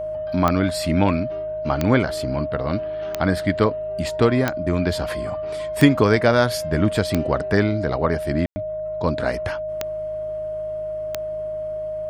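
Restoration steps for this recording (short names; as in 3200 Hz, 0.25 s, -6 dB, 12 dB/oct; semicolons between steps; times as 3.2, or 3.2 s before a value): de-click; de-hum 52.8 Hz, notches 3; notch 620 Hz, Q 30; room tone fill 8.46–8.56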